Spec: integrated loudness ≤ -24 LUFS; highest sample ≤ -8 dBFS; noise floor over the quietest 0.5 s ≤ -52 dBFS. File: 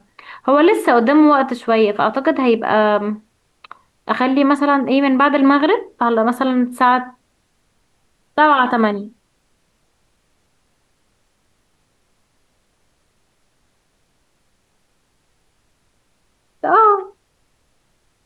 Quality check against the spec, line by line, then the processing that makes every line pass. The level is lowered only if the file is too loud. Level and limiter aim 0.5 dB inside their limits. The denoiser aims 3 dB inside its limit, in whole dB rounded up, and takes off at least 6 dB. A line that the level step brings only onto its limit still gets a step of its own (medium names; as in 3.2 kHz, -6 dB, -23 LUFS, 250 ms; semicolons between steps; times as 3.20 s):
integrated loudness -15.0 LUFS: fail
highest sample -4.0 dBFS: fail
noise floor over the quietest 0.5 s -63 dBFS: pass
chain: trim -9.5 dB